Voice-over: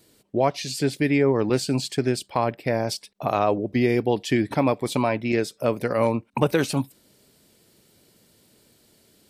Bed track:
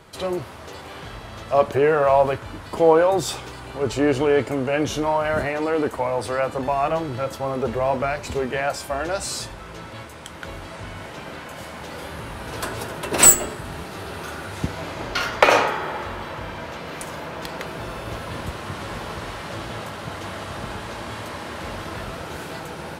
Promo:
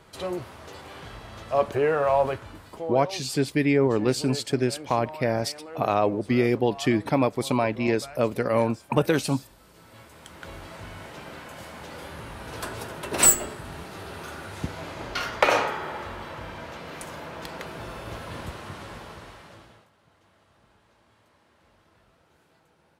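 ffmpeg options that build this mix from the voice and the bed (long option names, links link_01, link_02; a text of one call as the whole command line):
ffmpeg -i stem1.wav -i stem2.wav -filter_complex "[0:a]adelay=2550,volume=-1dB[link_01];[1:a]volume=8dB,afade=type=out:start_time=2.29:duration=0.59:silence=0.211349,afade=type=in:start_time=9.74:duration=0.83:silence=0.223872,afade=type=out:start_time=18.44:duration=1.44:silence=0.0595662[link_02];[link_01][link_02]amix=inputs=2:normalize=0" out.wav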